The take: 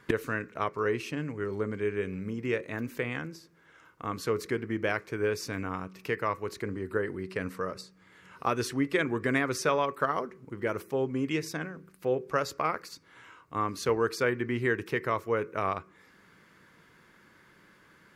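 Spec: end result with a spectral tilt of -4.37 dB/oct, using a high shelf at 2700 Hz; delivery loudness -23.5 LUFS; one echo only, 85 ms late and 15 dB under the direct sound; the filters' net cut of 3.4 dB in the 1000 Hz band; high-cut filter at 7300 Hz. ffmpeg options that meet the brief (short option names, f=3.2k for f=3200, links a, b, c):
-af "lowpass=7.3k,equalizer=f=1k:t=o:g=-5,highshelf=f=2.7k:g=3.5,aecho=1:1:85:0.178,volume=8.5dB"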